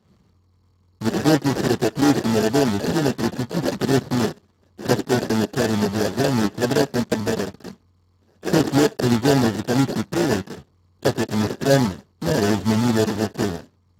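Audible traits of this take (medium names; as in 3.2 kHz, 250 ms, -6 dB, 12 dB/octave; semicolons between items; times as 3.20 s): aliases and images of a low sample rate 1.1 kHz, jitter 0%; Speex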